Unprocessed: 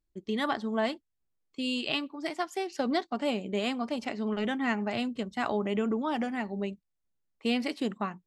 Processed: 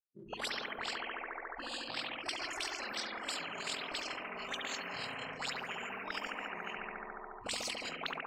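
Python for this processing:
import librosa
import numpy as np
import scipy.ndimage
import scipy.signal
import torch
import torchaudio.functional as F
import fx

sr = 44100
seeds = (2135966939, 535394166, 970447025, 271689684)

p1 = fx.delta_hold(x, sr, step_db=-49.5)
p2 = fx.noise_reduce_blind(p1, sr, reduce_db=26)
p3 = fx.peak_eq(p2, sr, hz=200.0, db=-8.5, octaves=0.51)
p4 = fx.level_steps(p3, sr, step_db=11)
p5 = p3 + (p4 * 10.0 ** (-2.0 / 20.0))
p6 = p5 * np.sin(2.0 * np.pi * 22.0 * np.arange(len(p5)) / sr)
p7 = fx.rider(p6, sr, range_db=4, speed_s=0.5)
p8 = fx.chorus_voices(p7, sr, voices=6, hz=0.76, base_ms=29, depth_ms=4.6, mix_pct=65)
p9 = fx.auto_wah(p8, sr, base_hz=250.0, top_hz=4900.0, q=9.0, full_db=-28.5, direction='up')
p10 = p9 + fx.echo_bbd(p9, sr, ms=71, stages=1024, feedback_pct=75, wet_db=-4.5, dry=0)
p11 = fx.spectral_comp(p10, sr, ratio=10.0)
y = p11 * 10.0 ** (7.5 / 20.0)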